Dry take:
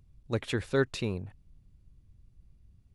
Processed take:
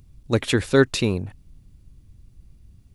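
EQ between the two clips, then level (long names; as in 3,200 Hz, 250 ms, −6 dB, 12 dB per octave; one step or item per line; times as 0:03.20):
parametric band 280 Hz +3.5 dB 0.65 octaves
high-shelf EQ 4,100 Hz +6.5 dB
+9.0 dB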